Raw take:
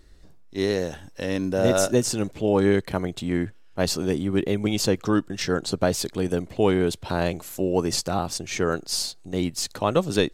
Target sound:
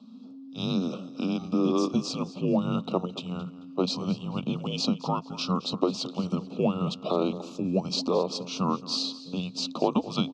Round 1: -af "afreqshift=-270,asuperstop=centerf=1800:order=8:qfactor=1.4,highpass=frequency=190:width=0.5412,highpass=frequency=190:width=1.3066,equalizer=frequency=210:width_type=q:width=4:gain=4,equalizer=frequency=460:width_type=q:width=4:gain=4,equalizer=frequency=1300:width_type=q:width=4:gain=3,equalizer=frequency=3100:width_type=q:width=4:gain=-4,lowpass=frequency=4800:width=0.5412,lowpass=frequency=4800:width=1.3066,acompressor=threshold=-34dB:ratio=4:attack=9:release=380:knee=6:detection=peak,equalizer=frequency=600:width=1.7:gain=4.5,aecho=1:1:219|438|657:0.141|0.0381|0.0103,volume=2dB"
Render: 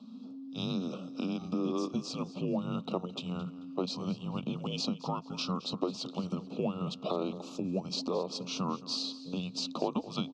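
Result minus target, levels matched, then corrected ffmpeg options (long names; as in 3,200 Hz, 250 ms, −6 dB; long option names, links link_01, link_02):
downward compressor: peak gain reduction +8 dB
-af "afreqshift=-270,asuperstop=centerf=1800:order=8:qfactor=1.4,highpass=frequency=190:width=0.5412,highpass=frequency=190:width=1.3066,equalizer=frequency=210:width_type=q:width=4:gain=4,equalizer=frequency=460:width_type=q:width=4:gain=4,equalizer=frequency=1300:width_type=q:width=4:gain=3,equalizer=frequency=3100:width_type=q:width=4:gain=-4,lowpass=frequency=4800:width=0.5412,lowpass=frequency=4800:width=1.3066,acompressor=threshold=-23.5dB:ratio=4:attack=9:release=380:knee=6:detection=peak,equalizer=frequency=600:width=1.7:gain=4.5,aecho=1:1:219|438|657:0.141|0.0381|0.0103,volume=2dB"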